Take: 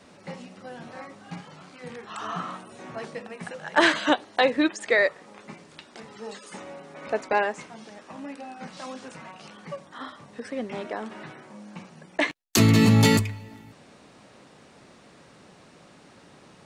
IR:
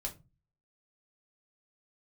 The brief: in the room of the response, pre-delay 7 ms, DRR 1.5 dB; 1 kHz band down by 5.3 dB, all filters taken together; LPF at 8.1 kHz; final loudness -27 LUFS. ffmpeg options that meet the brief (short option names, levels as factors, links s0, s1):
-filter_complex "[0:a]lowpass=8100,equalizer=f=1000:t=o:g=-7,asplit=2[s0][s1];[1:a]atrim=start_sample=2205,adelay=7[s2];[s1][s2]afir=irnorm=-1:irlink=0,volume=0.891[s3];[s0][s3]amix=inputs=2:normalize=0,volume=0.473"